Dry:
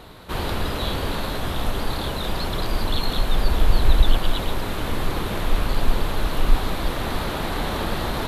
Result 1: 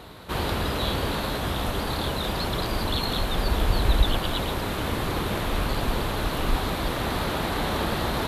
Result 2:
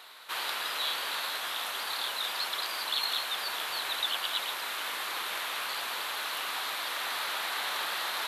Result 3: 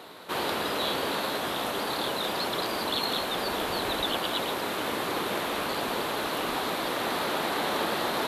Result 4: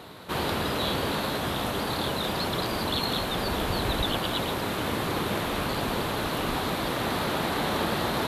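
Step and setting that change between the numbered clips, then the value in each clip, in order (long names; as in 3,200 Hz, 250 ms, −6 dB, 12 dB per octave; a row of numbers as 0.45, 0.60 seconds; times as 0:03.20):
high-pass filter, corner frequency: 44, 1,300, 300, 120 Hertz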